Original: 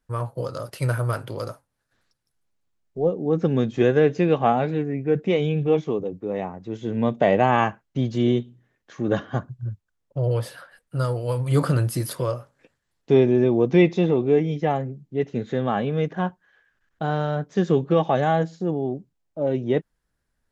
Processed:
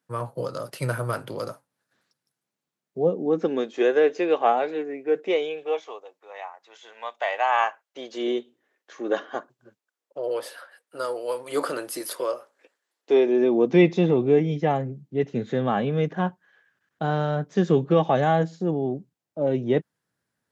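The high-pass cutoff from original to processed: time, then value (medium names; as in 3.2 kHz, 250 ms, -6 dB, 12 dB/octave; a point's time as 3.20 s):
high-pass 24 dB/octave
2.99 s 140 Hz
3.69 s 350 Hz
5.32 s 350 Hz
6.11 s 800 Hz
7.34 s 800 Hz
8.32 s 340 Hz
13.21 s 340 Hz
14.11 s 110 Hz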